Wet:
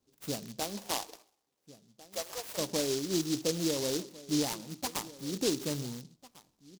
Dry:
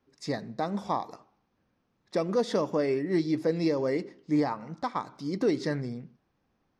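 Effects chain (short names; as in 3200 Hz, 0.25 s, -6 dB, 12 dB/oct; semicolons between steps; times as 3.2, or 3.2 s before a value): rattling part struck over -39 dBFS, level -34 dBFS; 0.59–2.57 HPF 200 Hz -> 790 Hz 24 dB/oct; outdoor echo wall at 240 m, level -18 dB; noise-modulated delay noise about 4900 Hz, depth 0.19 ms; gain -4.5 dB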